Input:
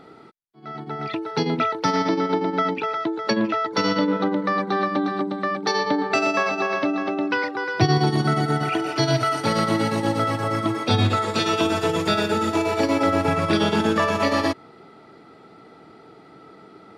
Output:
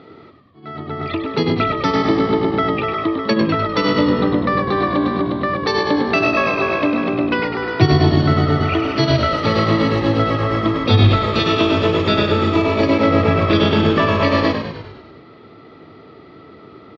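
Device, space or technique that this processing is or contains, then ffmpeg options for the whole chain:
frequency-shifting delay pedal into a guitar cabinet: -filter_complex "[0:a]asplit=8[link_01][link_02][link_03][link_04][link_05][link_06][link_07][link_08];[link_02]adelay=100,afreqshift=-57,volume=-7dB[link_09];[link_03]adelay=200,afreqshift=-114,volume=-11.7dB[link_10];[link_04]adelay=300,afreqshift=-171,volume=-16.5dB[link_11];[link_05]adelay=400,afreqshift=-228,volume=-21.2dB[link_12];[link_06]adelay=500,afreqshift=-285,volume=-25.9dB[link_13];[link_07]adelay=600,afreqshift=-342,volume=-30.7dB[link_14];[link_08]adelay=700,afreqshift=-399,volume=-35.4dB[link_15];[link_01][link_09][link_10][link_11][link_12][link_13][link_14][link_15]amix=inputs=8:normalize=0,highpass=80,equalizer=frequency=94:width_type=q:width=4:gain=7,equalizer=frequency=190:width_type=q:width=4:gain=-3,equalizer=frequency=800:width_type=q:width=4:gain=-8,equalizer=frequency=1500:width_type=q:width=4:gain=-6,lowpass=frequency=4300:width=0.5412,lowpass=frequency=4300:width=1.3066,volume=5.5dB"

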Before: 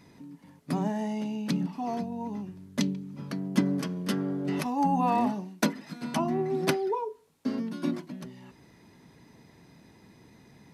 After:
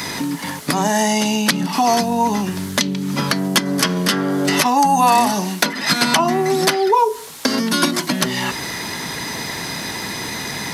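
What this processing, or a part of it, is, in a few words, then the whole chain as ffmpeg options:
mastering chain: -filter_complex "[0:a]equalizer=frequency=2500:width_type=o:width=0.36:gain=-4,acrossover=split=130|5200[link_01][link_02][link_03];[link_01]acompressor=threshold=-55dB:ratio=4[link_04];[link_02]acompressor=threshold=-38dB:ratio=4[link_05];[link_03]acompressor=threshold=-56dB:ratio=4[link_06];[link_04][link_05][link_06]amix=inputs=3:normalize=0,acompressor=threshold=-42dB:ratio=2.5,tiltshelf=frequency=710:gain=-9,asoftclip=type=hard:threshold=-25.5dB,alimiter=level_in=31dB:limit=-1dB:release=50:level=0:latency=1,volume=-1dB"

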